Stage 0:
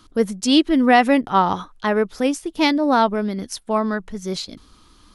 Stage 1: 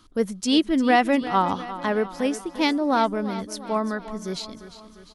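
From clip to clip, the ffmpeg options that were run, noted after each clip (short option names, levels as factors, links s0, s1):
-af "aecho=1:1:350|700|1050|1400|1750:0.2|0.108|0.0582|0.0314|0.017,volume=0.596"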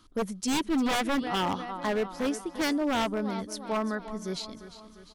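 -af "aeval=exprs='0.126*(abs(mod(val(0)/0.126+3,4)-2)-1)':c=same,volume=0.668"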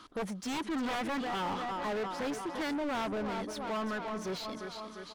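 -filter_complex "[0:a]asplit=2[s0][s1];[s1]highpass=f=720:p=1,volume=22.4,asoftclip=type=tanh:threshold=0.0891[s2];[s0][s2]amix=inputs=2:normalize=0,lowpass=f=2100:p=1,volume=0.501,volume=0.422"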